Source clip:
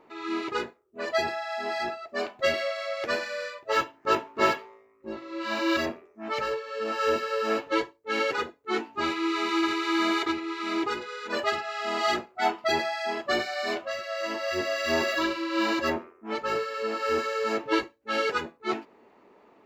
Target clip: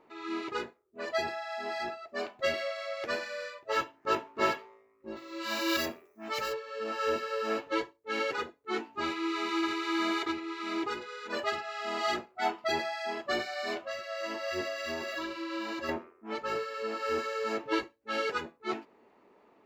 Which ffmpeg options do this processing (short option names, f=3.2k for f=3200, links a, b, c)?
-filter_complex "[0:a]asplit=3[a][b][c];[a]afade=t=out:st=5.15:d=0.02[d];[b]aemphasis=mode=production:type=75fm,afade=t=in:st=5.15:d=0.02,afade=t=out:st=6.52:d=0.02[e];[c]afade=t=in:st=6.52:d=0.02[f];[d][e][f]amix=inputs=3:normalize=0,asettb=1/sr,asplit=3[g][h][i];[g]atrim=end=14.674[j];[h]atrim=start=14.67:end=15.89,asetpts=PTS-STARTPTS,afade=t=in:d=0.004:c=qsin,afade=t=out:st=1.216:d=0.004:c=qsin,acompressor=threshold=-28dB:ratio=6[k];[i]atrim=start=15.886[l];[j][k]acrossfade=d=0.004:c1=hsin:c2=qsin[m];[m][l]acrossfade=d=0.004:c1=qsin:c2=hsin,volume=-5dB"